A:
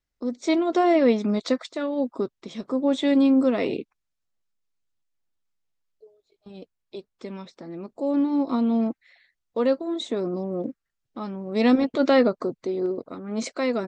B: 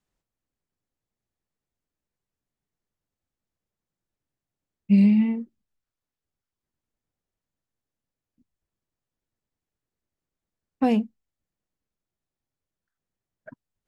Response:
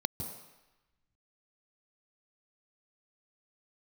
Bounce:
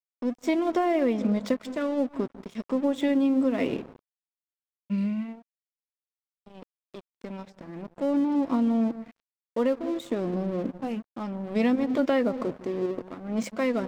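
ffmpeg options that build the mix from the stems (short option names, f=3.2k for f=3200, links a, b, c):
-filter_complex "[0:a]equalizer=f=400:t=o:w=0.33:g=-4,equalizer=f=1.25k:t=o:w=0.33:g=-6,equalizer=f=4k:t=o:w=0.33:g=-11,equalizer=f=6.3k:t=o:w=0.33:g=-7,volume=2.5dB,asplit=2[a][b];[b]volume=-19dB[c];[1:a]dynaudnorm=f=660:g=7:m=8dB,volume=-16dB[d];[2:a]atrim=start_sample=2205[e];[c][e]afir=irnorm=-1:irlink=0[f];[a][d][f]amix=inputs=3:normalize=0,aeval=exprs='sgn(val(0))*max(abs(val(0))-0.00841,0)':c=same,acompressor=threshold=-20dB:ratio=6"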